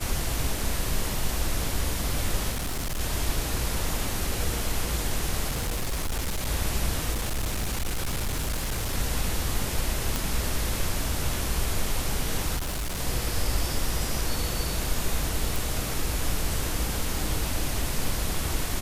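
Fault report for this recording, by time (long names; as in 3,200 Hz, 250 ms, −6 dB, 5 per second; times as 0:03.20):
0:02.51–0:03.01: clipping −26 dBFS
0:05.49–0:06.49: clipping −24.5 dBFS
0:07.12–0:08.94: clipping −24 dBFS
0:10.16: click
0:12.56–0:13.00: clipping −26.5 dBFS
0:15.56: click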